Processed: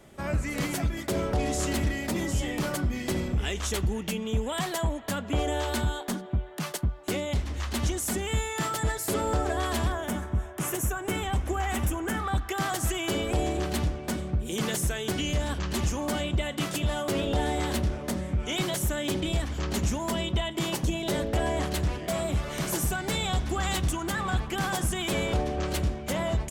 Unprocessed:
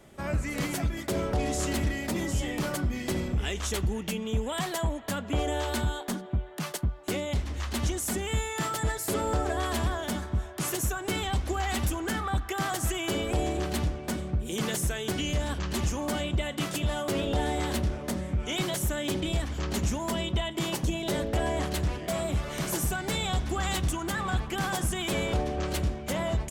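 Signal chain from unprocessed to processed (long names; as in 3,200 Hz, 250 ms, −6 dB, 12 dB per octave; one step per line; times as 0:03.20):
0:09.92–0:12.20: parametric band 4,400 Hz −12 dB 0.66 octaves
level +1 dB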